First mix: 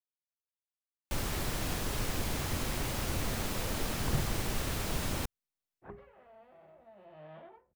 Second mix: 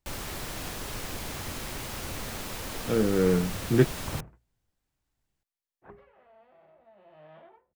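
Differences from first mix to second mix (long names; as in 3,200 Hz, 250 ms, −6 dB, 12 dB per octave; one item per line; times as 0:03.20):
speech: unmuted
first sound: entry −1.05 s
master: add low-shelf EQ 320 Hz −5 dB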